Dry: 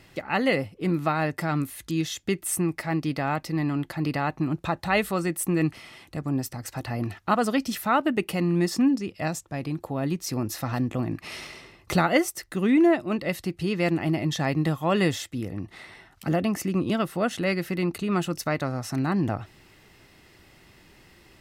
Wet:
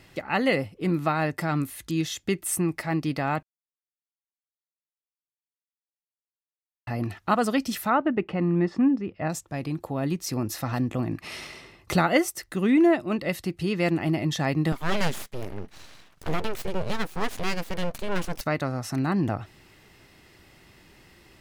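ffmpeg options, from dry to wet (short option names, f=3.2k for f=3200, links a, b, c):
-filter_complex "[0:a]asettb=1/sr,asplit=3[a][b][c];[a]atrim=end=7.904[d];[b]atrim=start=7.9:end=9.3,asetpts=PTS-STARTPTS,afade=t=in:d=0.004:c=qsin,afade=t=out:st=1.396:d=0.004:c=qsin,lowpass=1.9k[e];[c]atrim=start=9.296[f];[d][e]acrossfade=d=0.004:c1=hsin:c2=qsin[g];[g][f]acrossfade=d=0.004:c1=qsin:c2=hsin,asettb=1/sr,asplit=3[h][i][j];[h]atrim=end=14.724[k];[i]atrim=start=14.72:end=18.41,asetpts=PTS-STARTPTS,afade=t=in:d=0.004:c=qsin,afade=t=out:st=3.686:d=0.004:c=qsin,aeval=exprs='abs(val(0))':c=same[l];[j]atrim=start=18.406[m];[k][l]acrossfade=d=0.004:c1=hsin:c2=qsin[n];[n][m]acrossfade=d=0.004:c1=qsin:c2=hsin,asplit=3[o][p][q];[o]atrim=end=3.43,asetpts=PTS-STARTPTS,afade=t=out:st=3.426:d=0.004:c=hsin[r];[p]atrim=start=3.43:end=6.87,asetpts=PTS-STARTPTS,volume=0[s];[q]atrim=start=6.87,asetpts=PTS-STARTPTS,afade=t=in:d=0.004:c=hsin[t];[r][s][t]concat=n=3:v=0:a=1"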